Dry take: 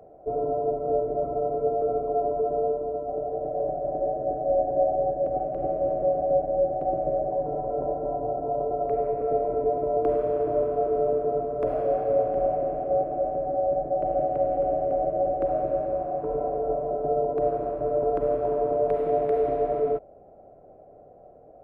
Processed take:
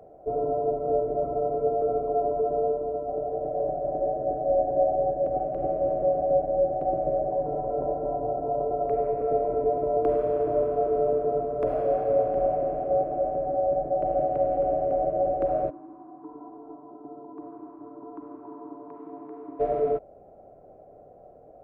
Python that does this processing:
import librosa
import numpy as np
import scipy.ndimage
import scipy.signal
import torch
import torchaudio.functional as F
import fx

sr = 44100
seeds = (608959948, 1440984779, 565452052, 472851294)

y = fx.double_bandpass(x, sr, hz=550.0, octaves=1.7, at=(15.69, 19.59), fade=0.02)